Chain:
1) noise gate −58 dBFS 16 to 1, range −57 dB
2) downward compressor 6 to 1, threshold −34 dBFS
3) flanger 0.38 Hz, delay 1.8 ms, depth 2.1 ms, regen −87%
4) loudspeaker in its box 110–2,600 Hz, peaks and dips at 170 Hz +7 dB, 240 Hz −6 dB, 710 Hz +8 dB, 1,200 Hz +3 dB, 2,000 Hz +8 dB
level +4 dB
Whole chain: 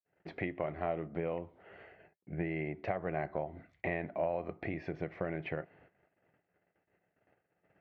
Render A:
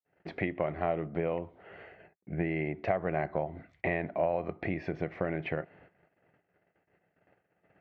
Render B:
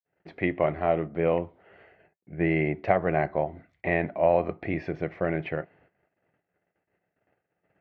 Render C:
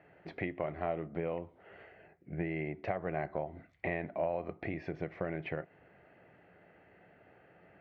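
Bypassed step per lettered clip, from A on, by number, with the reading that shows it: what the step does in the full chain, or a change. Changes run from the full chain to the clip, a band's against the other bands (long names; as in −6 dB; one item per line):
3, change in integrated loudness +4.5 LU
2, average gain reduction 8.0 dB
1, change in momentary loudness spread +1 LU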